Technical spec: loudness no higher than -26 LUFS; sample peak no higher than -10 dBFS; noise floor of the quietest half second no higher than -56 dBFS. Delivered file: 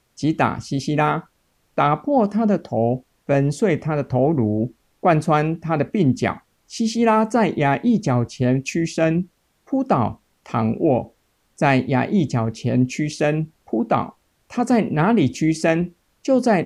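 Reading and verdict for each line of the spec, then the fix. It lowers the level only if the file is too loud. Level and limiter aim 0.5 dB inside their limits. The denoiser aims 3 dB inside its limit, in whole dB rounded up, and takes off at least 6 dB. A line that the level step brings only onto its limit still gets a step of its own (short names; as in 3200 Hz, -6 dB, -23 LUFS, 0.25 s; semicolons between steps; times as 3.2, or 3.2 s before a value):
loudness -20.5 LUFS: fail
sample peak -3.5 dBFS: fail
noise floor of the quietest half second -65 dBFS: OK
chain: gain -6 dB; limiter -10.5 dBFS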